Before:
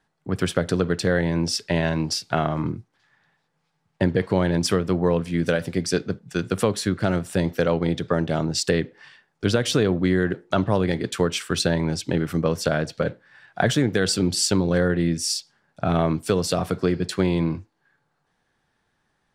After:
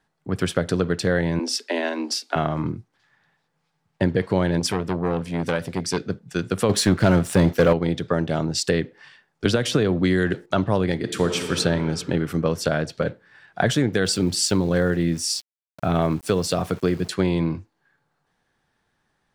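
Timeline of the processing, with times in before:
1.39–2.36 s: steep high-pass 230 Hz 96 dB/octave
4.60–5.98 s: transformer saturation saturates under 810 Hz
6.69–7.73 s: waveshaping leveller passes 2
9.45–10.46 s: three bands compressed up and down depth 100%
10.96–11.55 s: reverb throw, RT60 2.6 s, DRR 5 dB
14.05–17.10 s: small samples zeroed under -40.5 dBFS

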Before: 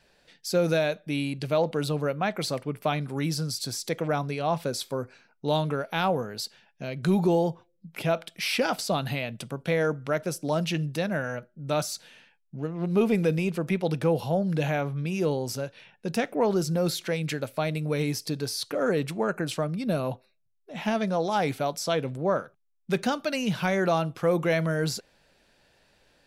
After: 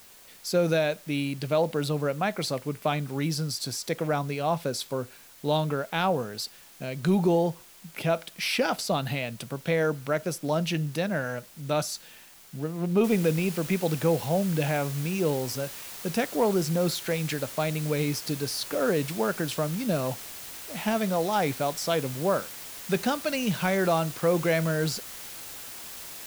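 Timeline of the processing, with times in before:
13.04 s: noise floor step -52 dB -41 dB

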